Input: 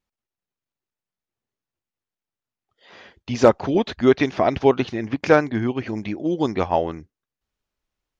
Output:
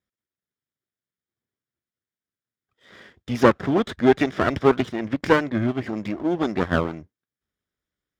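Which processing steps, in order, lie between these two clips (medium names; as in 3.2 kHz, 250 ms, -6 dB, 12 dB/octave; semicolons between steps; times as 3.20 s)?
comb filter that takes the minimum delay 0.57 ms; high-pass 75 Hz; treble shelf 3.7 kHz -7 dB; trim +1 dB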